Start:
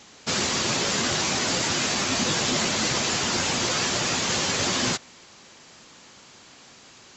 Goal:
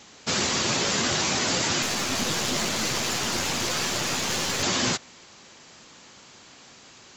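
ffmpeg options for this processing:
-filter_complex "[0:a]asettb=1/sr,asplit=3[a][b][c];[a]atrim=end=1.824[d];[b]atrim=start=1.82:end=4.63,asetpts=PTS-STARTPTS,afade=t=in:d=0.004:c=qsin,afade=t=out:st=2.806:d=0.004:c=qsin,aeval=exprs='clip(val(0),-1,0.0335)':c=same[e];[c]atrim=start=4.626[f];[d][e]acrossfade=d=0.004:c1=hsin:c2=qsin[g];[g][f]acrossfade=d=0.004:c1=qsin:c2=hsin"

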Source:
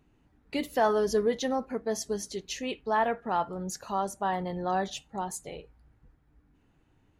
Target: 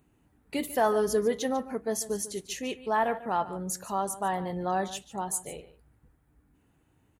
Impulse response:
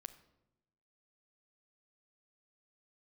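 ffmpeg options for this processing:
-filter_complex "[0:a]highpass=50,highshelf=f=7k:t=q:w=1.5:g=8,asplit=2[a][b];[b]aecho=0:1:146:0.168[c];[a][c]amix=inputs=2:normalize=0"

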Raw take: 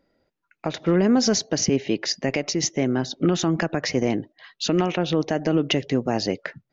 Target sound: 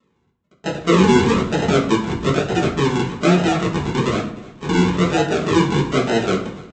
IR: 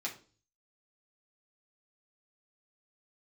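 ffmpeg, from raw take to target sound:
-filter_complex "[0:a]aresample=16000,acrusher=samples=20:mix=1:aa=0.000001:lfo=1:lforange=12:lforate=1.1,aresample=44100,aecho=1:1:303|606|909:0.0794|0.0334|0.014[a];[1:a]atrim=start_sample=2205,asetrate=24255,aresample=44100[b];[a][b]afir=irnorm=-1:irlink=0,volume=-1dB"

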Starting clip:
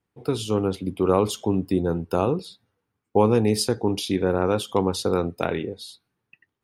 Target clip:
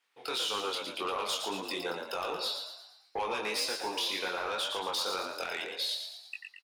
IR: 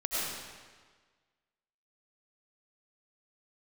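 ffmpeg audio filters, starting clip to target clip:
-filter_complex "[0:a]highpass=780,equalizer=f=3.3k:w=0.56:g=11.5,acontrast=78,alimiter=limit=-17dB:level=0:latency=1:release=205,flanger=delay=20:depth=4.4:speed=1.9,asoftclip=type=tanh:threshold=-25dB,asplit=2[a][b];[b]asplit=6[c][d][e][f][g][h];[c]adelay=114,afreqshift=55,volume=-6dB[i];[d]adelay=228,afreqshift=110,volume=-12.4dB[j];[e]adelay=342,afreqshift=165,volume=-18.8dB[k];[f]adelay=456,afreqshift=220,volume=-25.1dB[l];[g]adelay=570,afreqshift=275,volume=-31.5dB[m];[h]adelay=684,afreqshift=330,volume=-37.9dB[n];[i][j][k][l][m][n]amix=inputs=6:normalize=0[o];[a][o]amix=inputs=2:normalize=0,volume=-1.5dB"

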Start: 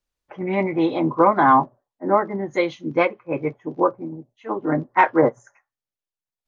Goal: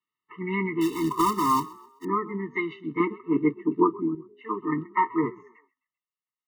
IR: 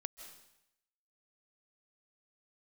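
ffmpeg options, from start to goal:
-filter_complex "[0:a]acrossover=split=380|730[a][b][c];[c]acompressor=threshold=-30dB:ratio=6[d];[a][b][d]amix=inputs=3:normalize=0,highpass=f=140:w=0.5412,highpass=f=140:w=1.3066,equalizer=f=150:t=q:w=4:g=-6,equalizer=f=250:t=q:w=4:g=-8,equalizer=f=380:t=q:w=4:g=-7,equalizer=f=570:t=q:w=4:g=3,equalizer=f=1.3k:t=q:w=4:g=8,equalizer=f=2.4k:t=q:w=4:g=7,lowpass=f=3.4k:w=0.5412,lowpass=f=3.4k:w=1.3066,asettb=1/sr,asplit=3[e][f][g];[e]atrim=end=0.814[h];[f]atrim=start=0.81:end=2.05,asetpts=PTS-STARTPTS,afade=t=in:d=0.004:c=qsin,afade=t=out:st=1.236:d=0.004:c=qsin,acrusher=bits=3:mode=log:mix=0:aa=0.000001[i];[g]atrim=start=2.046[j];[h][i]acrossfade=d=0.004:c1=hsin:c2=qsin[k];[k][j]acrossfade=d=0.004:c1=qsin:c2=hsin,asettb=1/sr,asplit=3[l][m][n];[l]atrim=end=3.004[o];[m]atrim=start=3:end=4.15,asetpts=PTS-STARTPTS,afade=t=in:d=0.004:c=qsin,afade=t=out:st=1.146:d=0.004:c=qsin,equalizer=f=270:w=1:g=11.5[p];[n]atrim=start=4.146[q];[o][p]acrossfade=d=0.004:c1=hsin:c2=qsin[r];[r][q]acrossfade=d=0.004:c1=qsin:c2=hsin,asplit=2[s][t];[t]asplit=3[u][v][w];[u]adelay=130,afreqshift=47,volume=-21dB[x];[v]adelay=260,afreqshift=94,volume=-29.2dB[y];[w]adelay=390,afreqshift=141,volume=-37.4dB[z];[x][y][z]amix=inputs=3:normalize=0[aa];[s][aa]amix=inputs=2:normalize=0,afftfilt=real='re*eq(mod(floor(b*sr/1024/440),2),0)':imag='im*eq(mod(floor(b*sr/1024/440),2),0)':win_size=1024:overlap=0.75"

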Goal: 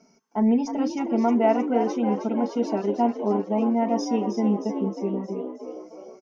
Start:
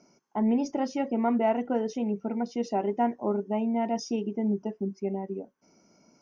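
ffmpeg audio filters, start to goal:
-filter_complex "[0:a]aecho=1:1:4.5:0.76,asplit=8[a][b][c][d][e][f][g][h];[b]adelay=313,afreqshift=59,volume=-8.5dB[i];[c]adelay=626,afreqshift=118,volume=-13.2dB[j];[d]adelay=939,afreqshift=177,volume=-18dB[k];[e]adelay=1252,afreqshift=236,volume=-22.7dB[l];[f]adelay=1565,afreqshift=295,volume=-27.4dB[m];[g]adelay=1878,afreqshift=354,volume=-32.2dB[n];[h]adelay=2191,afreqshift=413,volume=-36.9dB[o];[a][i][j][k][l][m][n][o]amix=inputs=8:normalize=0"

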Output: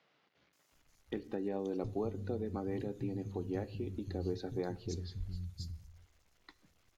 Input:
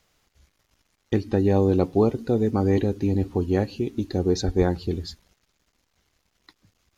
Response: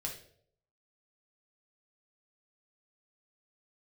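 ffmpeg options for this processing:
-filter_complex "[0:a]acompressor=threshold=-40dB:ratio=2,acrossover=split=160|4300[a][b][c];[c]adelay=530[d];[a]adelay=720[e];[e][b][d]amix=inputs=3:normalize=0,asplit=2[f][g];[1:a]atrim=start_sample=2205,lowshelf=f=130:g=10[h];[g][h]afir=irnorm=-1:irlink=0,volume=-12.5dB[i];[f][i]amix=inputs=2:normalize=0,volume=-4dB"

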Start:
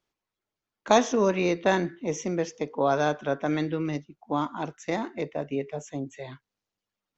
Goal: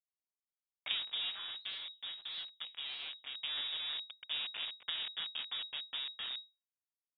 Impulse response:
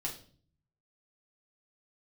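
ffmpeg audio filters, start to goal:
-filter_complex "[0:a]lowshelf=f=390:g=6.5,acompressor=threshold=-35dB:ratio=6,acrusher=bits=4:dc=4:mix=0:aa=0.000001,lowpass=f=3.2k:t=q:w=0.5098,lowpass=f=3.2k:t=q:w=0.6013,lowpass=f=3.2k:t=q:w=0.9,lowpass=f=3.2k:t=q:w=2.563,afreqshift=-3800,asplit=3[a][b][c];[a]afade=t=out:st=1.29:d=0.02[d];[b]flanger=delay=1.7:depth=4.6:regen=83:speed=1.6:shape=sinusoidal,afade=t=in:st=1.29:d=0.02,afade=t=out:st=3.34:d=0.02[e];[c]afade=t=in:st=3.34:d=0.02[f];[d][e][f]amix=inputs=3:normalize=0,volume=1dB"

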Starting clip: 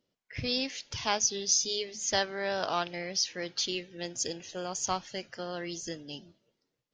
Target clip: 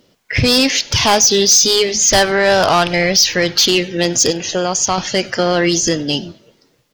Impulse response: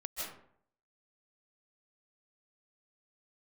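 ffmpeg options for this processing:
-filter_complex "[0:a]asplit=3[a][b][c];[a]afade=t=out:st=1.94:d=0.02[d];[b]asubboost=boost=5:cutoff=110,afade=t=in:st=1.94:d=0.02,afade=t=out:st=3.55:d=0.02[e];[c]afade=t=in:st=3.55:d=0.02[f];[d][e][f]amix=inputs=3:normalize=0,asettb=1/sr,asplit=3[g][h][i];[g]atrim=end=4.304[j];[h]atrim=start=4.3:end=4.98,asetpts=PTS-STARTPTS,afade=t=in:d=0.004:c=qsin,afade=t=out:st=0.676:d=0.004:c=qsin,acompressor=threshold=-43dB:ratio=2[k];[i]atrim=start=4.976[l];[j][k]acrossfade=d=0.004:c1=hsin:c2=qsin[m];[m][l]acrossfade=d=0.004:c1=qsin:c2=hsin,asoftclip=type=tanh:threshold=-27.5dB,asplit=2[n][o];[o]adelay=99.13,volume=-25dB,highshelf=f=4k:g=-2.23[p];[n][p]amix=inputs=2:normalize=0,alimiter=level_in=30dB:limit=-1dB:release=50:level=0:latency=1,volume=-5dB"

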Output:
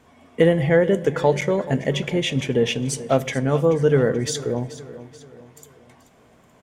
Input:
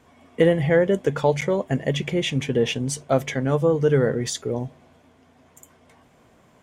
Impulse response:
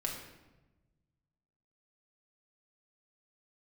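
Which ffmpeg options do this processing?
-filter_complex "[0:a]aecho=1:1:432|864|1296|1728:0.158|0.0713|0.0321|0.0144,asplit=2[a][b];[1:a]atrim=start_sample=2205[c];[b][c]afir=irnorm=-1:irlink=0,volume=-15dB[d];[a][d]amix=inputs=2:normalize=0"

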